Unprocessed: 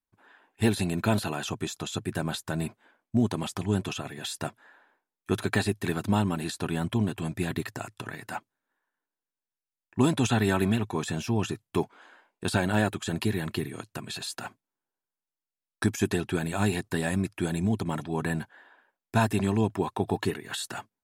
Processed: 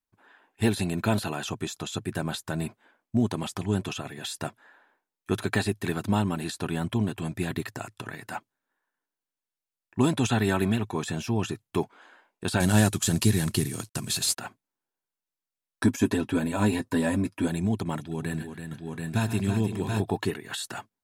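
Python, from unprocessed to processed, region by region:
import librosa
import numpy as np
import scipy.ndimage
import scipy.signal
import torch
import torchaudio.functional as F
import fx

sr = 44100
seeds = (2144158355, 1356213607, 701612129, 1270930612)

y = fx.chain(x, sr, fx.cvsd(bps=64000),
    fx.bass_treble(bass_db=8, treble_db=14), at=(12.6, 14.37))
y = fx.chain(y, sr, fx.notch_comb(f0_hz=180.0),
    fx.small_body(hz=(260.0, 530.0, 970.0), ring_ms=40, db=10), at=(15.83, 17.48))
y = fx.chain(y, sr, fx.peak_eq(hz=880.0, db=-9.5, octaves=1.9),
    fx.echo_multitap(ms=(82, 134, 330, 732, 761, 888), db=(-17.5, -12.5, -7.5, -3.5, -17.0, -19.5)), at=(17.98, 20.02))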